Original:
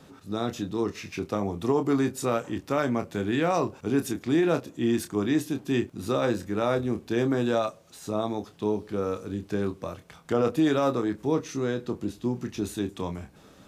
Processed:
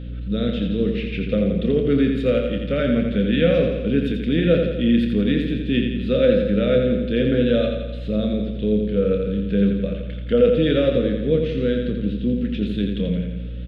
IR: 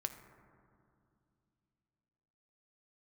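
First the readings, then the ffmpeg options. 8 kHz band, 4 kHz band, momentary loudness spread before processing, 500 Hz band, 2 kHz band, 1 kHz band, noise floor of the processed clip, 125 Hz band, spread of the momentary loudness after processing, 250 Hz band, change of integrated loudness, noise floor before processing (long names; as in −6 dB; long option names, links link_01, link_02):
below −20 dB, +8.5 dB, 9 LU, +8.0 dB, +5.0 dB, −8.0 dB, −29 dBFS, +9.5 dB, 6 LU, +7.5 dB, +7.5 dB, −53 dBFS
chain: -af "firequalizer=gain_entry='entry(100,0);entry(190,13);entry(350,-4);entry(510,12);entry(870,-29);entry(1400,0);entry(3200,11);entry(6000,-25)':delay=0.05:min_phase=1,aeval=exprs='val(0)+0.0282*(sin(2*PI*60*n/s)+sin(2*PI*2*60*n/s)/2+sin(2*PI*3*60*n/s)/3+sin(2*PI*4*60*n/s)/4+sin(2*PI*5*60*n/s)/5)':channel_layout=same,aecho=1:1:85|170|255|340|425|510|595|680:0.531|0.313|0.185|0.109|0.0643|0.038|0.0224|0.0132"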